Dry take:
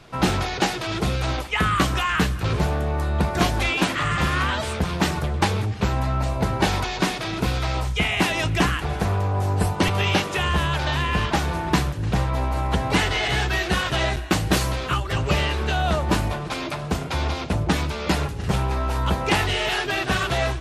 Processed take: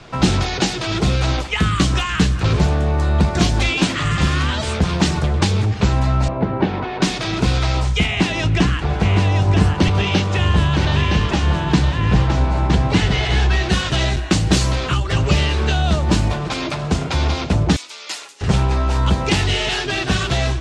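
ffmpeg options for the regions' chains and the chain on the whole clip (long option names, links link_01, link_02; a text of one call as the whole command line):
ffmpeg -i in.wav -filter_complex "[0:a]asettb=1/sr,asplit=3[link_01][link_02][link_03];[link_01]atrim=end=6.284[link_04];[link_02]atrim=start=6.28:end=7.02,asetpts=PTS-STARTPTS,afade=type=in:duration=0.004:curve=qsin,afade=type=out:start_time=0.736:duration=0.004:curve=qsin,highpass=320,lowpass=2500,aemphasis=mode=reproduction:type=riaa[link_05];[link_03]atrim=start=7.016[link_06];[link_04][link_05]acrossfade=duration=0.004:curve1=hsin:curve2=qsin[link_07];[link_07][link_06]acrossfade=duration=0.004:curve1=qsin:curve2=hsin,asettb=1/sr,asplit=3[link_08][link_09][link_10];[link_08]atrim=end=8.064[link_11];[link_09]atrim=start=8.06:end=13.69,asetpts=PTS-STARTPTS,afade=type=in:duration=0.004:curve=qsin,afade=type=out:start_time=5.626:duration=0.004:curve=qsin,lowpass=frequency=3600:poles=1,aecho=1:1:964:0.531,atrim=end_sample=248283[link_12];[link_10]atrim=start=13.686[link_13];[link_11][link_12]acrossfade=duration=0.004:curve1=hsin:curve2=qsin[link_14];[link_14][link_13]acrossfade=duration=0.004:curve1=qsin:curve2=hsin,asettb=1/sr,asplit=3[link_15][link_16][link_17];[link_15]atrim=end=17.764[link_18];[link_16]atrim=start=17.76:end=18.41,asetpts=PTS-STARTPTS,afade=type=in:duration=0.004:curve=qsin,afade=type=out:start_time=0.646:duration=0.004:curve=qsin,highpass=frequency=230:width=0.5412,highpass=frequency=230:width=1.3066,aderivative,bandreject=frequency=1600:width=18[link_19];[link_17]atrim=start=18.406[link_20];[link_18][link_19]acrossfade=duration=0.004:curve1=hsin:curve2=qsin[link_21];[link_21][link_20]acrossfade=duration=0.004:curve1=qsin:curve2=hsin,lowpass=frequency=8100:width=0.5412,lowpass=frequency=8100:width=1.3066,acrossover=split=340|3000[link_22][link_23][link_24];[link_23]acompressor=threshold=-31dB:ratio=6[link_25];[link_22][link_25][link_24]amix=inputs=3:normalize=0,volume=7dB" out.wav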